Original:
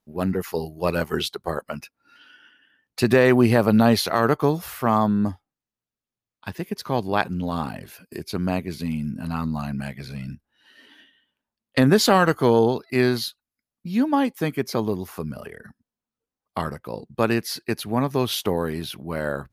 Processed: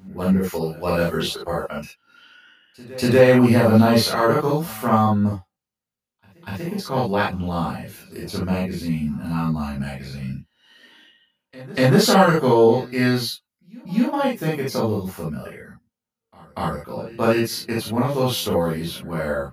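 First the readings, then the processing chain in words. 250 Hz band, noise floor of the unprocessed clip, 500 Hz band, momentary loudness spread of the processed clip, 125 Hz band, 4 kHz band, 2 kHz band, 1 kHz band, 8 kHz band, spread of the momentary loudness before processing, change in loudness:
+2.0 dB, under -85 dBFS, +3.0 dB, 17 LU, +3.5 dB, +2.0 dB, +1.0 dB, +2.0 dB, +2.0 dB, 17 LU, +2.5 dB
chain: pre-echo 240 ms -22 dB; gated-style reverb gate 90 ms flat, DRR -6 dB; trim -5 dB

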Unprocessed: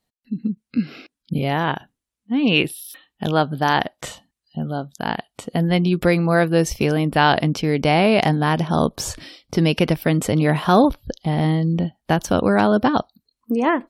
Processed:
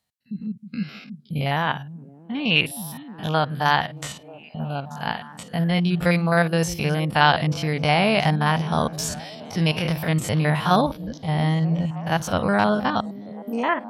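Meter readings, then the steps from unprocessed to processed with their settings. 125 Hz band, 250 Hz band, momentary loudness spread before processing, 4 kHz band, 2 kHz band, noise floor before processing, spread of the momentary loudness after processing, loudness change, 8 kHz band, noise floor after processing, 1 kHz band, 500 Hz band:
-1.5 dB, -5.0 dB, 13 LU, 0.0 dB, 0.0 dB, -84 dBFS, 14 LU, -2.5 dB, -1.0 dB, -47 dBFS, -1.5 dB, -5.0 dB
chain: spectrogram pixelated in time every 50 ms; high-pass 66 Hz; peaking EQ 330 Hz -12 dB 1.3 oct; repeats whose band climbs or falls 313 ms, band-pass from 170 Hz, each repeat 0.7 oct, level -9.5 dB; trim +2 dB

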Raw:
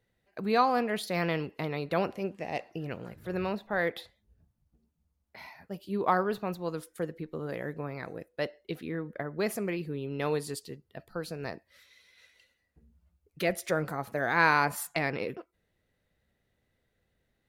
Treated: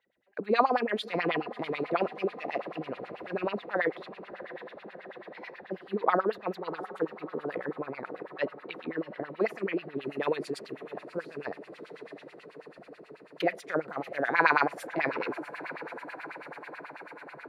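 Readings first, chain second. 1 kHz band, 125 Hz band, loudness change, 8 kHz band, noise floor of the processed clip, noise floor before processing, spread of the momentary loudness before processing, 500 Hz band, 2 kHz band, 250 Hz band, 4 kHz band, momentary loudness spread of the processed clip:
+0.5 dB, -8.0 dB, -0.5 dB, under -10 dB, -54 dBFS, -78 dBFS, 15 LU, +1.0 dB, +0.5 dB, -0.5 dB, -1.0 dB, 19 LU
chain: echo that smears into a reverb 674 ms, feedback 74%, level -14 dB; LFO band-pass sine 9.2 Hz 290–3200 Hz; trim +8 dB

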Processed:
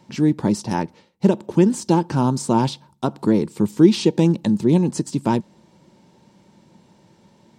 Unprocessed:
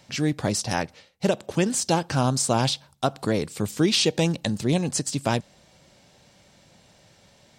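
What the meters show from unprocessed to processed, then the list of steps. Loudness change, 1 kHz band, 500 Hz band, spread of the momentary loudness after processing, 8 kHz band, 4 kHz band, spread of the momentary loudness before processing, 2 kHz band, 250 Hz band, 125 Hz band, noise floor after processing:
+5.0 dB, +3.0 dB, +4.5 dB, 10 LU, -6.5 dB, -6.0 dB, 7 LU, -4.5 dB, +8.5 dB, +4.5 dB, -56 dBFS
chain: small resonant body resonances 210/330/900 Hz, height 16 dB, ringing for 30 ms; trim -6.5 dB

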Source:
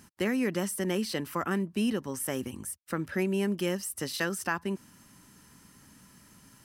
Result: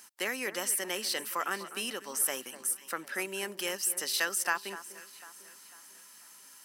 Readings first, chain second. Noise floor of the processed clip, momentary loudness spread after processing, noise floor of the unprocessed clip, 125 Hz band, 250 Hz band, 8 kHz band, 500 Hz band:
-54 dBFS, 21 LU, -58 dBFS, -21.0 dB, -15.0 dB, +7.0 dB, -6.5 dB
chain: high-pass 620 Hz 12 dB/octave; treble shelf 3.3 kHz +7.5 dB; echo whose repeats swap between lows and highs 249 ms, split 1.8 kHz, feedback 64%, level -13 dB

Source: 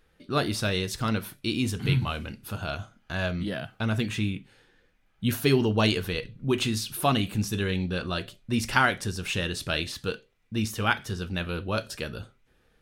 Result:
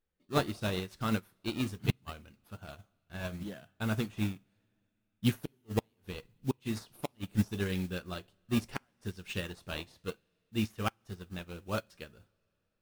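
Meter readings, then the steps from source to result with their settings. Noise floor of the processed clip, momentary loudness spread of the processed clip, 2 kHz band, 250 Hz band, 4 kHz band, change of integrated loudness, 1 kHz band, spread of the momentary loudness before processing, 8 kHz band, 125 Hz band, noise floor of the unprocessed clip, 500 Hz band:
-80 dBFS, 15 LU, -12.5 dB, -6.5 dB, -12.0 dB, -8.0 dB, -11.0 dB, 11 LU, -12.0 dB, -8.0 dB, -66 dBFS, -9.0 dB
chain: modulation noise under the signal 19 dB; in parallel at -5 dB: decimation with a swept rate 17×, swing 160% 0.73 Hz; on the sum: inverted gate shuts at -10 dBFS, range -31 dB; two-slope reverb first 0.24 s, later 3.9 s, from -19 dB, DRR 14 dB; upward expansion 2.5:1, over -33 dBFS; trim -3 dB

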